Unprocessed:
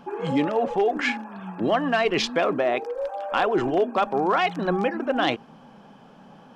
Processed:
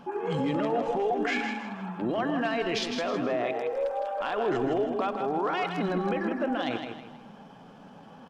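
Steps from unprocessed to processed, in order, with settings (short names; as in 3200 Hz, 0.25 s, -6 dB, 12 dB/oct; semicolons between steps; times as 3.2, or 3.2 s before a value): limiter -20 dBFS, peak gain reduction 10.5 dB; tempo 0.79×; feedback echo 0.159 s, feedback 34%, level -6.5 dB; reverb RT60 0.60 s, pre-delay 92 ms, DRR 13.5 dB; gain -1 dB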